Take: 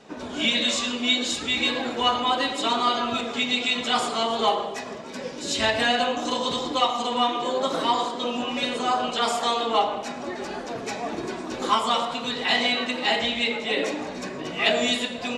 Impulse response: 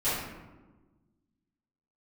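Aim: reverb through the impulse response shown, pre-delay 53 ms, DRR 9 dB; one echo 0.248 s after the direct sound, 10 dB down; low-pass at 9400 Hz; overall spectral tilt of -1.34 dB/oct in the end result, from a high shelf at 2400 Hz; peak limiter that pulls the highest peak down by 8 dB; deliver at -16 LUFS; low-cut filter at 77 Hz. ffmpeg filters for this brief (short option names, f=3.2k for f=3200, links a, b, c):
-filter_complex "[0:a]highpass=77,lowpass=9.4k,highshelf=f=2.4k:g=-7,alimiter=limit=-17dB:level=0:latency=1,aecho=1:1:248:0.316,asplit=2[a][b];[1:a]atrim=start_sample=2205,adelay=53[c];[b][c]afir=irnorm=-1:irlink=0,volume=-19.5dB[d];[a][d]amix=inputs=2:normalize=0,volume=11dB"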